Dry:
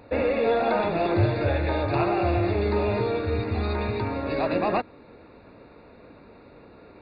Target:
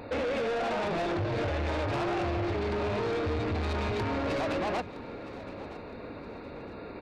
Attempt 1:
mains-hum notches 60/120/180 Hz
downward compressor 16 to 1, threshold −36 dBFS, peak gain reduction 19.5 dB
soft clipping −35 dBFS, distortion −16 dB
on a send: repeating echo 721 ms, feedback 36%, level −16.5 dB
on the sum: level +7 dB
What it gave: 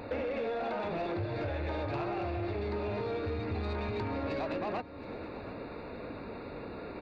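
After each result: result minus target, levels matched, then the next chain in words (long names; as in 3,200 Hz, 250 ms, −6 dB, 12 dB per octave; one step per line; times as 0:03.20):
downward compressor: peak gain reduction +10 dB; echo 244 ms early
mains-hum notches 60/120/180 Hz
downward compressor 16 to 1, threshold −25.5 dBFS, peak gain reduction 9.5 dB
soft clipping −35 dBFS, distortion −8 dB
on a send: repeating echo 721 ms, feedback 36%, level −16.5 dB
on the sum: level +7 dB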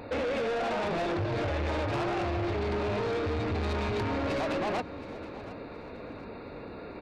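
echo 244 ms early
mains-hum notches 60/120/180 Hz
downward compressor 16 to 1, threshold −25.5 dBFS, peak gain reduction 9.5 dB
soft clipping −35 dBFS, distortion −8 dB
on a send: repeating echo 965 ms, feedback 36%, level −16.5 dB
on the sum: level +7 dB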